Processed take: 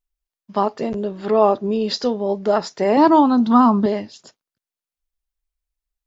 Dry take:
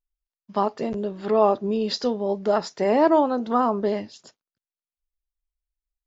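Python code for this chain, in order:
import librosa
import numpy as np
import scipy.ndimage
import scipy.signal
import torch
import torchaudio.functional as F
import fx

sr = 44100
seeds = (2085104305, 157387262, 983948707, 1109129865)

y = fx.graphic_eq_10(x, sr, hz=(125, 250, 500, 1000, 2000, 4000), db=(9, 9, -11, 7, -4, 7), at=(2.97, 3.86))
y = y * librosa.db_to_amplitude(3.5)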